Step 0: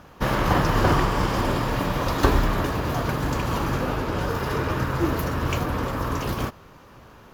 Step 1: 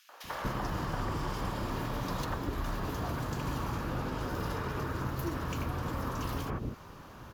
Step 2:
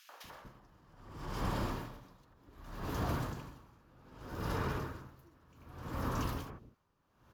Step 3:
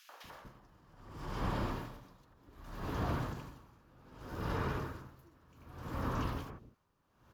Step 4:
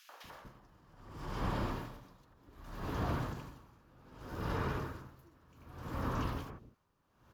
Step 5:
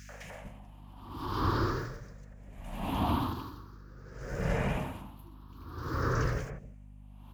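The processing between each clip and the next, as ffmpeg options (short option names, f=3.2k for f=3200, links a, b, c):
-filter_complex "[0:a]acompressor=threshold=-31dB:ratio=6,acrossover=split=510|2300[a][b][c];[b]adelay=90[d];[a]adelay=240[e];[e][d][c]amix=inputs=3:normalize=0"
-filter_complex "[0:a]acrossover=split=430[a][b];[b]alimiter=level_in=7.5dB:limit=-24dB:level=0:latency=1:release=51,volume=-7.5dB[c];[a][c]amix=inputs=2:normalize=0,aeval=exprs='val(0)*pow(10,-30*(0.5-0.5*cos(2*PI*0.65*n/s))/20)':c=same,volume=1dB"
-filter_complex "[0:a]acrossover=split=4300[a][b];[b]acompressor=threshold=-59dB:ratio=4:attack=1:release=60[c];[a][c]amix=inputs=2:normalize=0"
-af anull
-af "afftfilt=real='re*pow(10,14/40*sin(2*PI*(0.54*log(max(b,1)*sr/1024/100)/log(2)-(0.47)*(pts-256)/sr)))':imag='im*pow(10,14/40*sin(2*PI*(0.54*log(max(b,1)*sr/1024/100)/log(2)-(0.47)*(pts-256)/sr)))':win_size=1024:overlap=0.75,aeval=exprs='val(0)+0.00224*(sin(2*PI*50*n/s)+sin(2*PI*2*50*n/s)/2+sin(2*PI*3*50*n/s)/3+sin(2*PI*4*50*n/s)/4+sin(2*PI*5*50*n/s)/5)':c=same,volume=4dB"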